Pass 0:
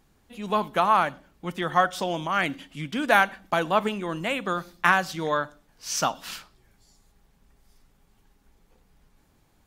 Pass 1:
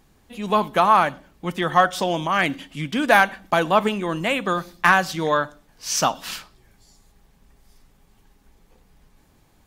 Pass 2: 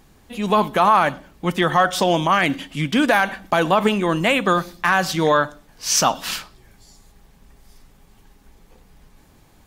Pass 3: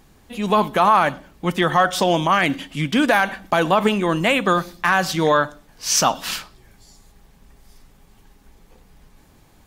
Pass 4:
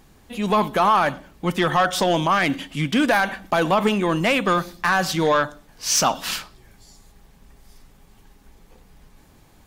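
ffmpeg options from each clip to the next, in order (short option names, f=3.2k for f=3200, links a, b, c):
-af "bandreject=f=1.4k:w=21,acontrast=33"
-af "alimiter=level_in=10.5dB:limit=-1dB:release=50:level=0:latency=1,volume=-5dB"
-af anull
-af "asoftclip=type=tanh:threshold=-10dB"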